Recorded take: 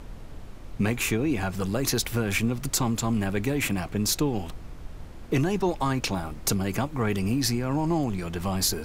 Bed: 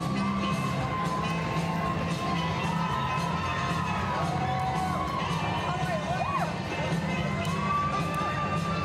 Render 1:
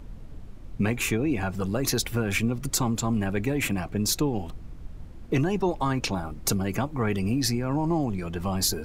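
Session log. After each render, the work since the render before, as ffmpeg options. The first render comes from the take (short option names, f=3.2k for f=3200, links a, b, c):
-af "afftdn=nr=8:nf=-41"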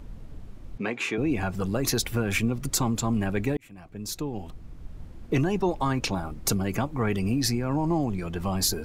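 -filter_complex "[0:a]asettb=1/sr,asplit=3[a][b][c];[a]atrim=end=0.784[d];[b]atrim=start=0.78:end=1.18,asetpts=PTS-STARTPTS,afade=t=in:d=0.004:c=qsin,afade=t=out:st=0.396:d=0.004:c=qsin,highpass=300,lowpass=4.5k[e];[c]atrim=start=1.176[f];[d][e]acrossfade=d=0.004:c1=hsin:c2=qsin[g];[g][f]acrossfade=d=0.004:c1=qsin:c2=hsin,asplit=2[h][i];[h]atrim=end=3.57,asetpts=PTS-STARTPTS,afade=t=out:st=3.566:d=0.004:c=hsin[j];[i]atrim=start=3.57,asetpts=PTS-STARTPTS,afade=t=in:d=1.44[k];[j][k]concat=n=2:v=0:a=1"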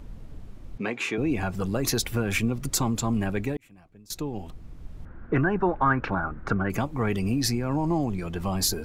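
-filter_complex "[0:a]asettb=1/sr,asplit=3[a][b][c];[a]atrim=end=5.054[d];[b]atrim=start=5.05:end=6.7,asetpts=PTS-STARTPTS,afade=t=in:d=0.004:c=qsin,afade=t=out:st=1.646:d=0.004:c=qsin,lowpass=f=1.5k:t=q:w=5.1[e];[c]atrim=start=6.696[f];[d][e]acrossfade=d=0.004:c1=hsin:c2=qsin[g];[g][f]acrossfade=d=0.004:c1=qsin:c2=hsin,asplit=2[h][i];[h]atrim=end=4.1,asetpts=PTS-STARTPTS,afade=t=out:st=3.27:d=0.83:silence=0.0841395[j];[i]atrim=start=4.1,asetpts=PTS-STARTPTS,afade=t=in:d=0.004:c=hsin:silence=0.0841395[k];[j][k]concat=n=2:v=0:a=1"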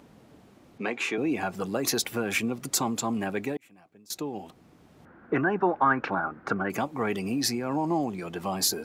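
-af "highpass=230,equalizer=f=770:t=o:w=0.25:g=3"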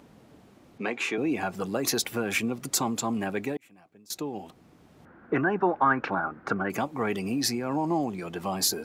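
-af anull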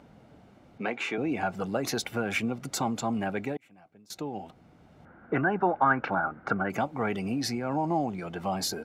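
-af "lowpass=f=2.9k:p=1,aecho=1:1:1.4:0.31"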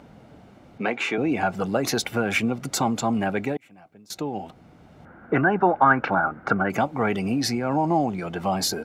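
-af "volume=6dB"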